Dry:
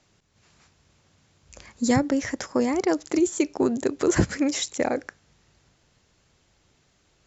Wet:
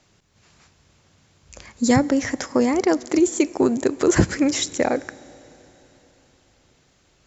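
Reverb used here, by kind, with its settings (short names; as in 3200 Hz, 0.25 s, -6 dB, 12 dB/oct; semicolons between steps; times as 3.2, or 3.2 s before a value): Schroeder reverb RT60 3.9 s, combs from 29 ms, DRR 20 dB; gain +4 dB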